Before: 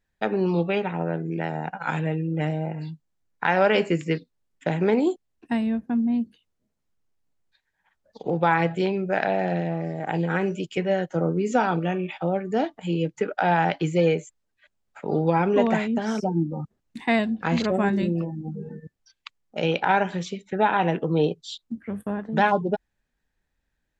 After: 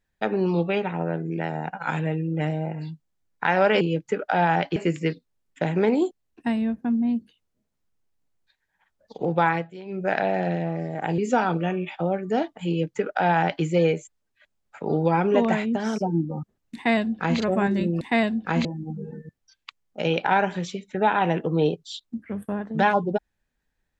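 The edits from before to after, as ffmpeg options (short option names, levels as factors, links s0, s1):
-filter_complex "[0:a]asplit=8[s0][s1][s2][s3][s4][s5][s6][s7];[s0]atrim=end=3.812[s8];[s1]atrim=start=12.898:end=13.852[s9];[s2]atrim=start=3.808:end=8.72,asetpts=PTS-STARTPTS,afade=t=out:st=4.652:d=0.26:c=qsin:silence=0.158489[s10];[s3]atrim=start=8.72:end=8.9,asetpts=PTS-STARTPTS,volume=0.158[s11];[s4]atrim=start=8.9:end=10.232,asetpts=PTS-STARTPTS,afade=t=in:d=0.26:c=qsin:silence=0.158489[s12];[s5]atrim=start=11.398:end=18.232[s13];[s6]atrim=start=16.968:end=17.612[s14];[s7]atrim=start=18.228[s15];[s8][s9]acrossfade=d=0.004:c1=hsin:c2=hsin[s16];[s10][s11][s12]concat=n=3:v=0:a=1[s17];[s16][s17]acrossfade=d=0.004:c1=hsin:c2=hsin[s18];[s18][s13]acrossfade=d=0.004:c1=hsin:c2=hsin[s19];[s19][s14]acrossfade=d=0.004:c1=hsin:c2=hsin[s20];[s20][s15]acrossfade=d=0.004:c1=hsin:c2=hsin"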